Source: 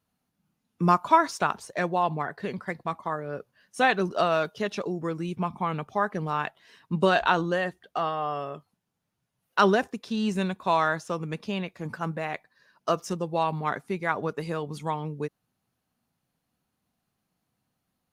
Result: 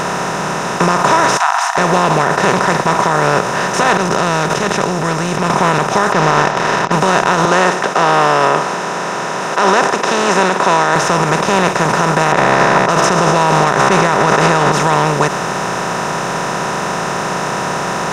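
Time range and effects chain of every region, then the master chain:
0:01.37–0:01.78: linear-phase brick-wall high-pass 680 Hz + high shelf with overshoot 1,800 Hz −9.5 dB, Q 1.5
0:03.97–0:05.50: guitar amp tone stack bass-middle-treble 10-0-1 + level that may fall only so fast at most 31 dB per second
0:06.12–0:06.92: variable-slope delta modulation 32 kbit/s + leveller curve on the samples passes 1 + high-frequency loss of the air 340 metres
0:07.45–0:10.96: high-pass filter 320 Hz 24 dB per octave + high-frequency loss of the air 110 metres
0:12.32–0:14.72: low-pass that shuts in the quiet parts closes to 750 Hz, open at −22.5 dBFS + tuned comb filter 67 Hz, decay 1.9 s, mix 40% + envelope flattener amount 100%
whole clip: compressor on every frequency bin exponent 0.2; brickwall limiter −6.5 dBFS; level +5.5 dB

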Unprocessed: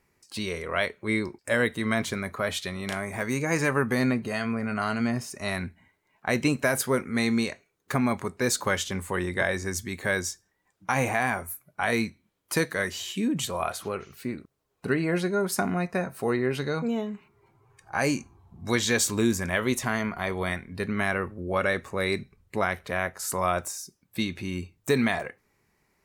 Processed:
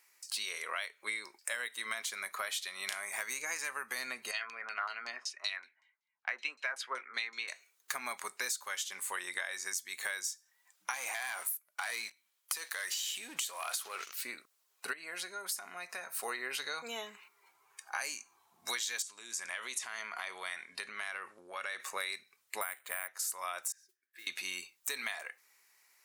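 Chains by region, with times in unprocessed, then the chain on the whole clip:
0:04.31–0:07.48: high-pass filter 270 Hz 24 dB per octave + auto-filter low-pass saw down 5.3 Hz 990–5,800 Hz + multiband upward and downward expander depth 100%
0:10.94–0:14.14: high-pass filter 230 Hz 6 dB per octave + leveller curve on the samples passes 2 + downward compressor 4 to 1, threshold −27 dBFS
0:14.93–0:16.23: high-pass filter 54 Hz + downward compressor 3 to 1, threshold −36 dBFS
0:19.02–0:21.80: low-pass filter 10,000 Hz 24 dB per octave + downward compressor, threshold −32 dBFS
0:22.61–0:23.08: low-pass filter 3,200 Hz + bad sample-rate conversion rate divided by 4×, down filtered, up hold
0:23.72–0:24.27: pair of resonant band-passes 790 Hz, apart 2.2 octaves + downward compressor 2 to 1, threshold −51 dBFS + noise that follows the level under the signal 22 dB
whole clip: high-pass filter 1,000 Hz 12 dB per octave; high-shelf EQ 3,000 Hz +11 dB; downward compressor 10 to 1, threshold −34 dBFS

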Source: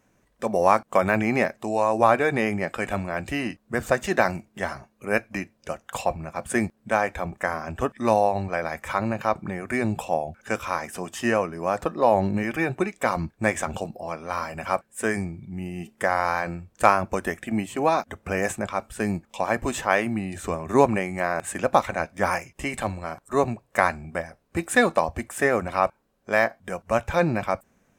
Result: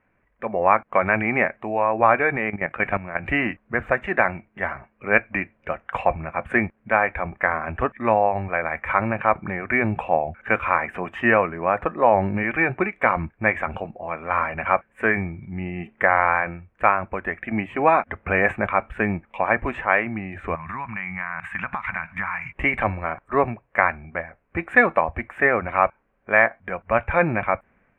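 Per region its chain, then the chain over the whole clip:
0:02.36–0:03.25: high-pass filter 41 Hz 6 dB per octave + parametric band 150 Hz +9 dB 0.29 octaves + output level in coarse steps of 13 dB
0:20.55–0:22.52: drawn EQ curve 100 Hz 0 dB, 170 Hz +5 dB, 470 Hz −21 dB, 980 Hz +5 dB + downward compressor 10 to 1, threshold −35 dBFS
whole clip: low-shelf EQ 140 Hz +11.5 dB; automatic gain control; drawn EQ curve 150 Hz 0 dB, 2,300 Hz +14 dB, 4,900 Hz −24 dB; level −10.5 dB

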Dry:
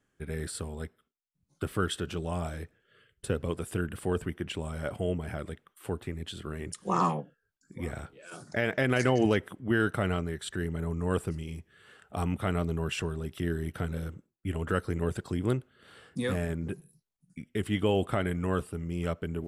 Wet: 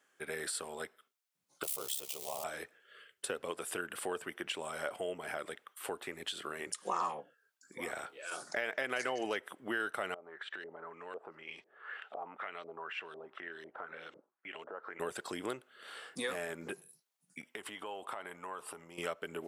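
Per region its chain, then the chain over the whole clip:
0:01.63–0:02.44: spike at every zero crossing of −27.5 dBFS + phaser with its sweep stopped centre 640 Hz, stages 4 + ring modulation 34 Hz
0:10.14–0:15.00: high-pass filter 370 Hz 6 dB per octave + downward compressor 3 to 1, threshold −48 dBFS + auto-filter low-pass saw up 2 Hz 530–4,500 Hz
0:17.41–0:18.98: parametric band 950 Hz +11 dB 0.63 octaves + downward compressor, threshold −41 dBFS
whole clip: high-pass filter 590 Hz 12 dB per octave; downward compressor 2.5 to 1, threshold −44 dBFS; level +6.5 dB

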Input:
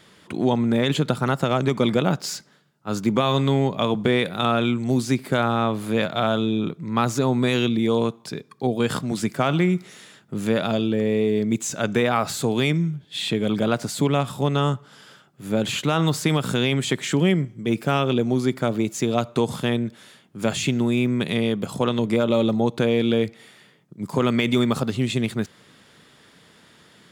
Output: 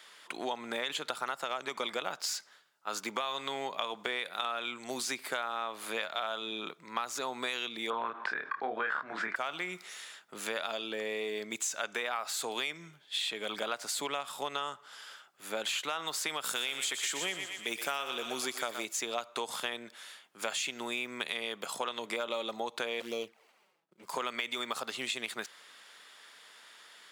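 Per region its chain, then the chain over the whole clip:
0:07.90–0:09.36: low-pass with resonance 1,600 Hz, resonance Q 4 + double-tracking delay 27 ms −4.5 dB + envelope flattener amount 50%
0:16.44–0:18.85: high-shelf EQ 5,200 Hz +9.5 dB + feedback echo with a high-pass in the loop 120 ms, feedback 52%, high-pass 620 Hz, level −8 dB
0:23.00–0:24.07: running median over 25 samples + flanger swept by the level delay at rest 6.6 ms, full sweep at −17 dBFS
whole clip: high-pass filter 860 Hz 12 dB per octave; downward compressor, threshold −31 dBFS

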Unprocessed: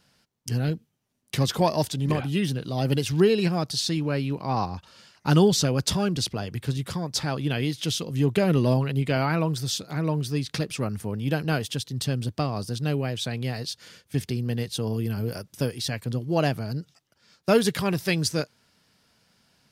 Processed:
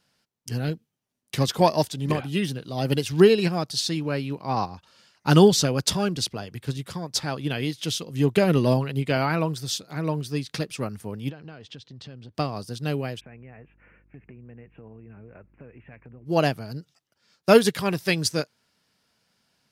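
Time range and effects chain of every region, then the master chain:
0:11.30–0:12.35: Gaussian smoothing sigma 1.8 samples + downward compressor 5 to 1, threshold −32 dBFS
0:13.19–0:16.25: Butterworth low-pass 2,600 Hz 96 dB per octave + downward compressor, threshold −35 dBFS + hum with harmonics 50 Hz, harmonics 7, −52 dBFS −8 dB per octave
whole clip: low-shelf EQ 160 Hz −5.5 dB; expander for the loud parts 1.5 to 1, over −38 dBFS; level +6 dB

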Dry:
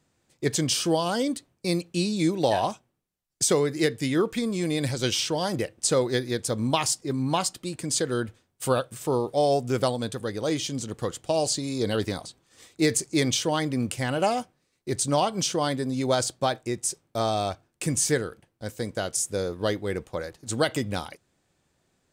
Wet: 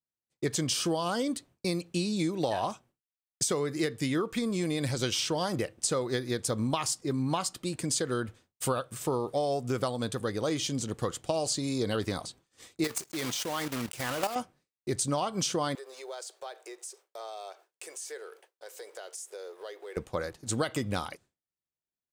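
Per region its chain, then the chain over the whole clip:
0:12.84–0:14.36: one scale factor per block 3 bits + low-shelf EQ 270 Hz −9 dB + output level in coarse steps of 11 dB
0:15.75–0:19.97: mu-law and A-law mismatch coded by mu + elliptic high-pass filter 390 Hz + downward compressor 2.5 to 1, threshold −46 dBFS
whole clip: downward expander −50 dBFS; dynamic equaliser 1,200 Hz, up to +6 dB, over −47 dBFS, Q 3.6; downward compressor, threshold −26 dBFS

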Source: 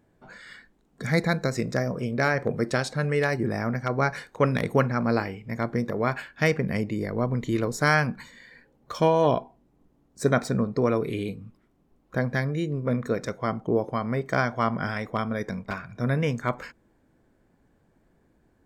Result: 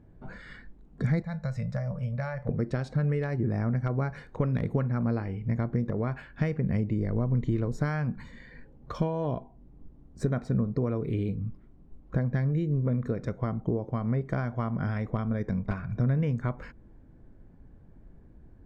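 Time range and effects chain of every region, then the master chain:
0:01.22–0:02.49: Chebyshev band-stop filter 180–590 Hz + upward compression, threshold −33 dBFS + tuned comb filter 290 Hz, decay 0.15 s, mix 70%
whole clip: downward compressor 3 to 1, threshold −35 dBFS; RIAA equalisation playback

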